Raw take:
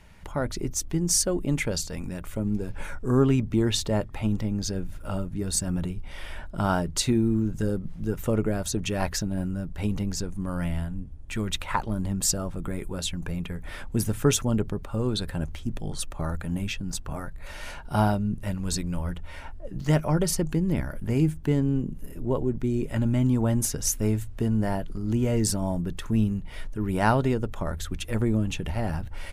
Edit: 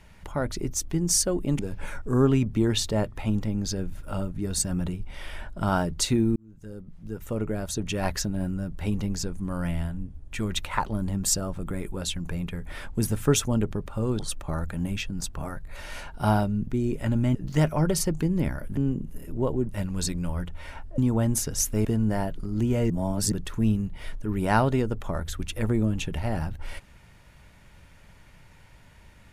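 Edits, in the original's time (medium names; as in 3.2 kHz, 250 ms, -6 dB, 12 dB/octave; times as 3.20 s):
1.59–2.56 s: delete
7.33–9.06 s: fade in
15.16–15.90 s: delete
18.38–19.67 s: swap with 22.57–23.25 s
21.09–21.65 s: delete
24.12–24.37 s: delete
25.42–25.84 s: reverse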